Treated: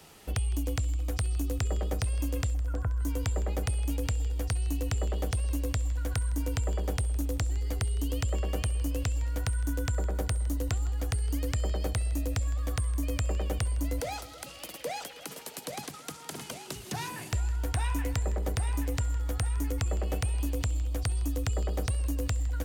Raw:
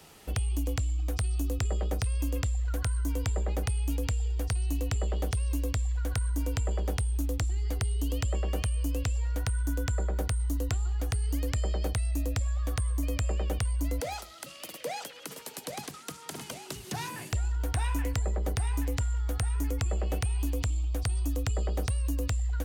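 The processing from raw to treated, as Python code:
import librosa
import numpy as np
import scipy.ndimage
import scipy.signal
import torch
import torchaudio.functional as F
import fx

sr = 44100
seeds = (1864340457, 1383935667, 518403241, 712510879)

y = fx.lowpass(x, sr, hz=1500.0, slope=24, at=(2.53, 2.99), fade=0.02)
y = fx.echo_heads(y, sr, ms=160, heads='first and second', feedback_pct=53, wet_db=-20)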